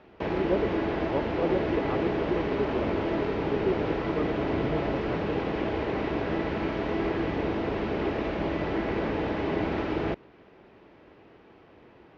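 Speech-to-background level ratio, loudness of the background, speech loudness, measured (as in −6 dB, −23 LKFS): −4.0 dB, −29.5 LKFS, −33.5 LKFS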